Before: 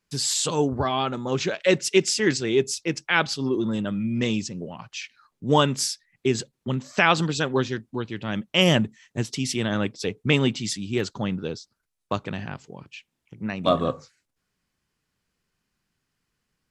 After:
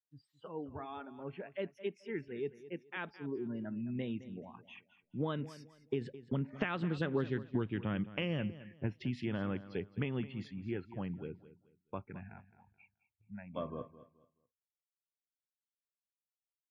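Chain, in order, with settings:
source passing by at 0:07.39, 18 m/s, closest 4.8 metres
noise reduction from a noise print of the clip's start 24 dB
dynamic equaliser 840 Hz, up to −6 dB, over −48 dBFS, Q 1.6
downward compressor 6 to 1, threshold −41 dBFS, peak gain reduction 19 dB
high-frequency loss of the air 470 metres
on a send: repeating echo 214 ms, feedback 27%, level −15.5 dB
on the sum: level +10.5 dB

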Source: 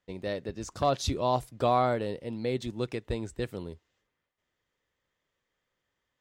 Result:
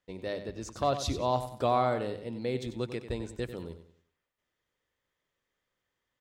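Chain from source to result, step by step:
mains-hum notches 50/100/150/200 Hz
on a send: repeating echo 94 ms, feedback 35%, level −11 dB
on the sum: level −2 dB

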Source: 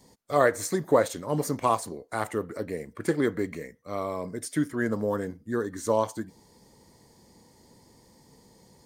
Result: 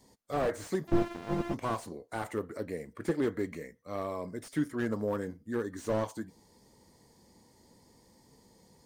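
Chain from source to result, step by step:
0:00.87–0:01.54: samples sorted by size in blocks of 128 samples
flanger 1.2 Hz, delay 2.8 ms, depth 1.6 ms, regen −79%
slew-rate limiting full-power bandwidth 30 Hz

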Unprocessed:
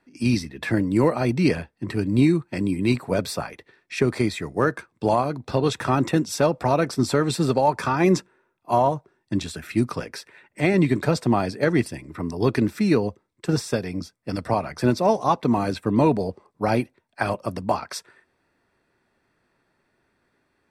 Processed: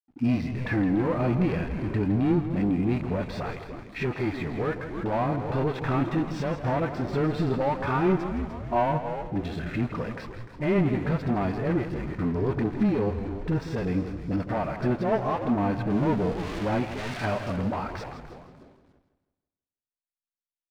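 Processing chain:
0:15.86–0:17.52: spike at every zero crossing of −18 dBFS
leveller curve on the samples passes 3
low-pass filter 2,600 Hz 12 dB per octave
echo with shifted repeats 298 ms, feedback 47%, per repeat −120 Hz, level −14.5 dB
downward compressor 3 to 1, threshold −20 dBFS, peak gain reduction 7.5 dB
all-pass dispersion highs, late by 41 ms, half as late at 450 Hz
harmonic and percussive parts rebalanced percussive −11 dB
slack as between gear wheels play −48.5 dBFS
feedback echo with a swinging delay time 163 ms, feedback 39%, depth 62 cents, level −11 dB
level −2 dB

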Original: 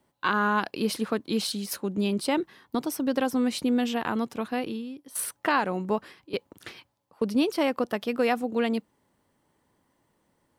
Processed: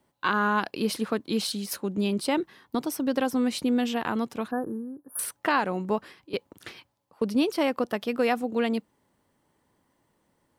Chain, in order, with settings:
0:04.51–0:05.19: linear-phase brick-wall band-stop 1,800–9,100 Hz

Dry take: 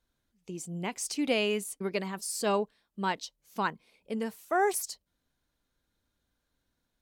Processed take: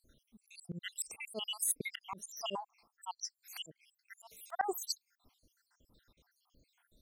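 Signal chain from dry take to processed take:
time-frequency cells dropped at random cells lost 78%
volume swells 525 ms
level +14 dB

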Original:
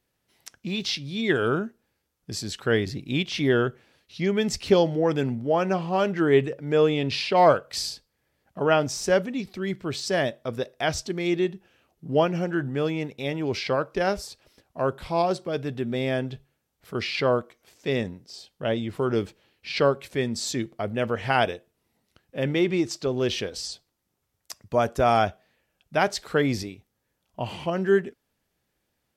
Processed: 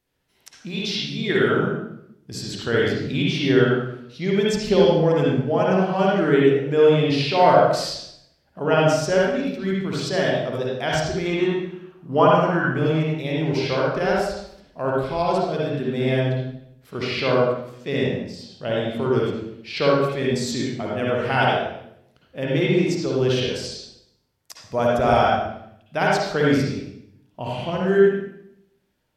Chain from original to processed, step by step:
0:11.26–0:12.74: parametric band 1,100 Hz +14 dB 0.72 octaves
convolution reverb RT60 0.75 s, pre-delay 50 ms, DRR −4.5 dB
level −2 dB

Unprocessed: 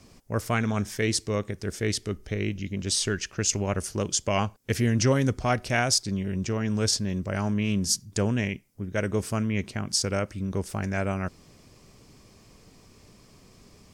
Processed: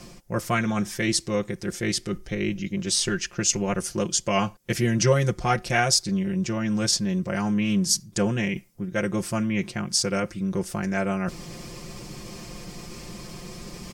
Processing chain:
comb filter 5.7 ms, depth 90%
reversed playback
upward compression, threshold −26 dBFS
reversed playback

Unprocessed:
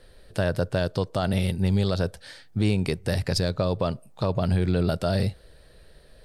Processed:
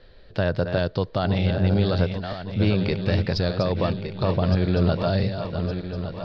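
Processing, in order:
feedback delay that plays each chunk backwards 582 ms, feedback 67%, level −7.5 dB
0:01.23–0:01.98: hum with harmonics 100 Hz, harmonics 8, −33 dBFS −4 dB per octave
Butterworth low-pass 4,800 Hz 36 dB per octave
level +1.5 dB

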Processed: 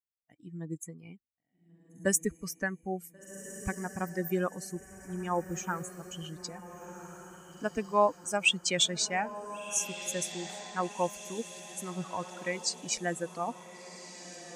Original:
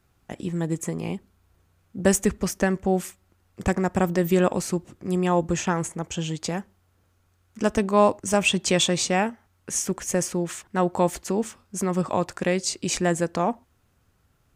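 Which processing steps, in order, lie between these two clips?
spectral dynamics exaggerated over time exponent 2
tilt shelving filter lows −4.5 dB, about 730 Hz
feedback delay with all-pass diffusion 1,468 ms, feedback 46%, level −12.5 dB
level −4.5 dB

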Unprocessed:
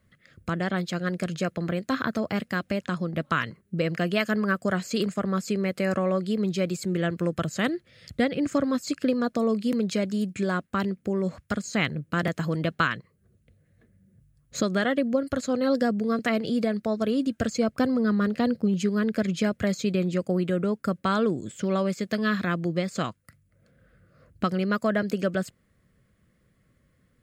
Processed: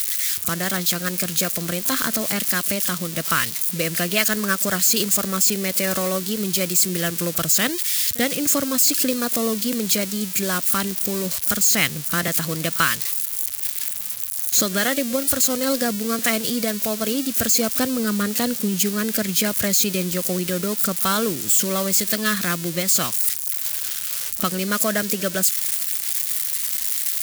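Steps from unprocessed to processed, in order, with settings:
spike at every zero crossing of −22.5 dBFS
high-shelf EQ 2,000 Hz +11.5 dB
echo ahead of the sound 40 ms −21.5 dB

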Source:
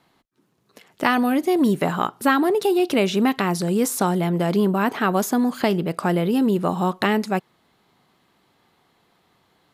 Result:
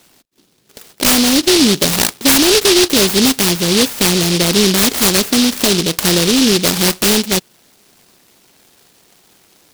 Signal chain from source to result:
dynamic equaliser 740 Hz, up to −7 dB, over −39 dBFS, Q 2.5
mid-hump overdrive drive 17 dB, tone 1,600 Hz, clips at −6 dBFS
short delay modulated by noise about 4,000 Hz, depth 0.32 ms
level +5.5 dB

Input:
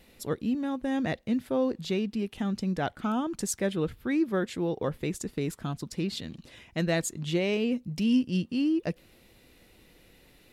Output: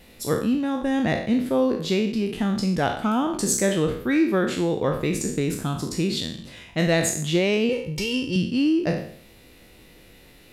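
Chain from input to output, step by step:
peak hold with a decay on every bin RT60 0.59 s
0:07.69–0:08.36: comb filter 2.2 ms, depth 86%
level +5.5 dB

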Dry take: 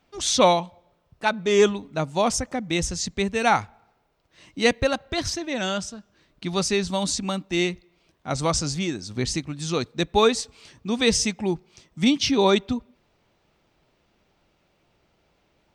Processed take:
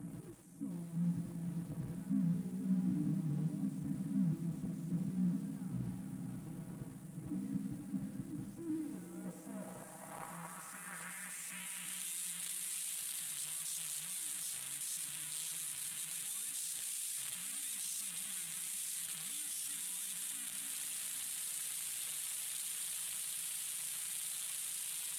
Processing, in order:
linear delta modulator 64 kbit/s, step −17 dBFS
parametric band 430 Hz −11.5 dB 2.9 octaves
in parallel at −0.5 dB: brickwall limiter −20 dBFS, peak gain reduction 10.5 dB
on the sum: drawn EQ curve 220 Hz 0 dB, 490 Hz −23 dB, 1,800 Hz −15 dB, 4,200 Hz −30 dB, 9,100 Hz +14 dB
soft clipping −14 dBFS, distortion −12 dB
high-pass filter 79 Hz 12 dB per octave
output level in coarse steps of 15 dB
time stretch by overlap-add 1.6×, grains 33 ms
feedback delay with all-pass diffusion 534 ms, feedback 48%, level −8 dB
band-pass filter sweep 250 Hz → 3,600 Hz, 0:08.55–0:12.08
feedback echo at a low word length 98 ms, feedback 35%, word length 10 bits, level −9 dB
level +5 dB

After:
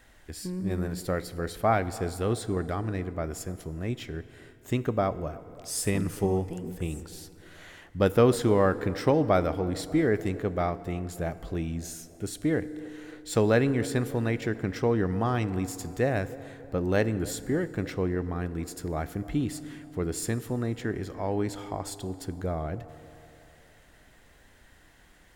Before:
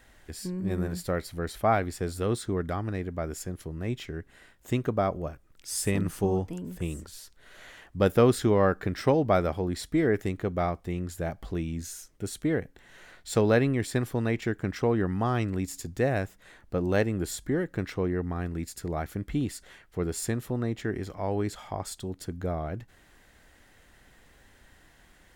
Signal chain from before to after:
feedback echo with a band-pass in the loop 297 ms, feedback 61%, band-pass 540 Hz, level −19 dB
feedback delay network reverb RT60 3.1 s, high-frequency decay 0.6×, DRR 14.5 dB

